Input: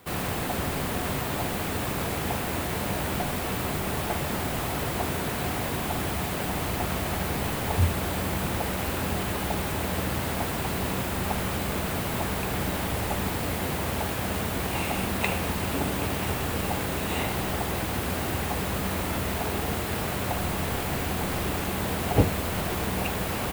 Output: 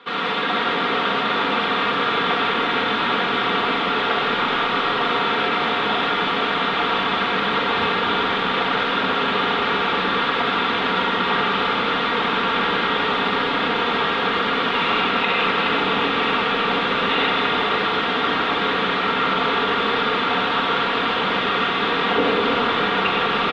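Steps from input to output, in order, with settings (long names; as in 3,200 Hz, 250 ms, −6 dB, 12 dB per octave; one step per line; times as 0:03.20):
loudspeaker in its box 350–3,600 Hz, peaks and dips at 660 Hz −7 dB, 1,300 Hz +8 dB, 3,500 Hz +9 dB
notch filter 670 Hz, Q 14
comb filter 4.3 ms, depth 62%
echo with shifted repeats 423 ms, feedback 61%, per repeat −37 Hz, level −11.5 dB
convolution reverb RT60 2.4 s, pre-delay 20 ms, DRR −1 dB
boost into a limiter +14 dB
level −8 dB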